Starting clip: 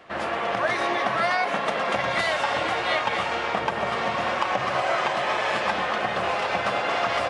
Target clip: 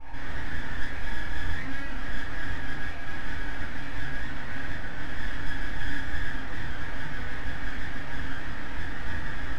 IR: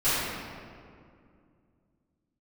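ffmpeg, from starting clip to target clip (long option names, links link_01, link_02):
-filter_complex "[0:a]alimiter=level_in=5.5dB:limit=-24dB:level=0:latency=1,volume=-5.5dB,bandpass=frequency=1100:width_type=q:width=8:csg=0,aeval=exprs='val(0)+0.000891*(sin(2*PI*60*n/s)+sin(2*PI*2*60*n/s)/2+sin(2*PI*3*60*n/s)/3+sin(2*PI*4*60*n/s)/4+sin(2*PI*5*60*n/s)/5)':channel_layout=same,aeval=exprs='abs(val(0))':channel_layout=same,asetrate=33560,aresample=44100[link_01];[1:a]atrim=start_sample=2205,afade=type=out:start_time=0.23:duration=0.01,atrim=end_sample=10584,asetrate=88200,aresample=44100[link_02];[link_01][link_02]afir=irnorm=-1:irlink=0,volume=7dB"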